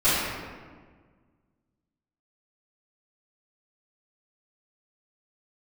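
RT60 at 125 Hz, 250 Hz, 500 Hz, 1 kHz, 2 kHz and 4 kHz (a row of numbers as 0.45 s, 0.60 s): 2.2 s, 2.1 s, 1.7 s, 1.5 s, 1.3 s, 0.95 s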